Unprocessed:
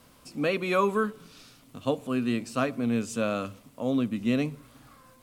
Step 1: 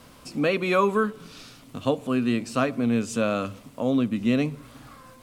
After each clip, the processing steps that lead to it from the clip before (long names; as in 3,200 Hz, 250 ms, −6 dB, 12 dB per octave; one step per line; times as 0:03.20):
high-shelf EQ 10,000 Hz −6.5 dB
in parallel at −0.5 dB: downward compressor, threshold −35 dBFS, peak gain reduction 14.5 dB
on the sum: level +1.5 dB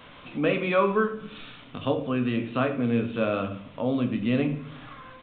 convolution reverb RT60 0.55 s, pre-delay 7 ms, DRR 5 dB
downsampling to 8,000 Hz
one half of a high-frequency compander encoder only
level −2.5 dB